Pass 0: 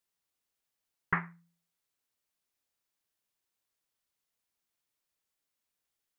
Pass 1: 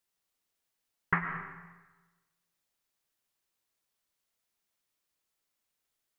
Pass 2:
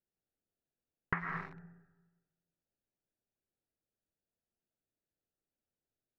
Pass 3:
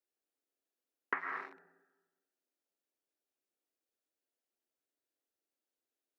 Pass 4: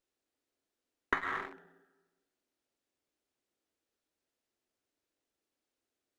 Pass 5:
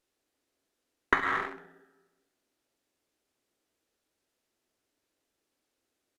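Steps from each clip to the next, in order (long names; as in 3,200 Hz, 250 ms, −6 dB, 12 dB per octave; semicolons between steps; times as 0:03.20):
convolution reverb RT60 1.2 s, pre-delay 75 ms, DRR 5.5 dB; level +1.5 dB
adaptive Wiener filter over 41 samples; downward compressor 6 to 1, threshold −33 dBFS, peak gain reduction 11 dB; level +2 dB
Butterworth high-pass 250 Hz 48 dB per octave
low-shelf EQ 270 Hz +9 dB; windowed peak hold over 3 samples; level +3.5 dB
repeating echo 66 ms, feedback 31%, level −14 dB; downsampling to 32,000 Hz; level +6.5 dB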